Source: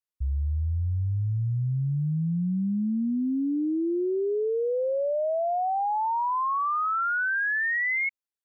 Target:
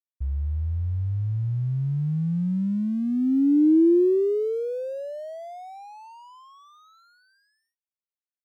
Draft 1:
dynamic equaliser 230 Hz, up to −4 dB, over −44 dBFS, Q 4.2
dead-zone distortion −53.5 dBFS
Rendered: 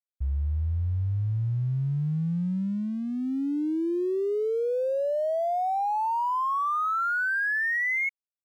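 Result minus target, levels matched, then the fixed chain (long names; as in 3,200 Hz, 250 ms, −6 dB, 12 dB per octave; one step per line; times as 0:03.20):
250 Hz band −4.0 dB
dynamic equaliser 230 Hz, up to −4 dB, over −44 dBFS, Q 4.2
low-pass with resonance 330 Hz, resonance Q 3.3
dead-zone distortion −53.5 dBFS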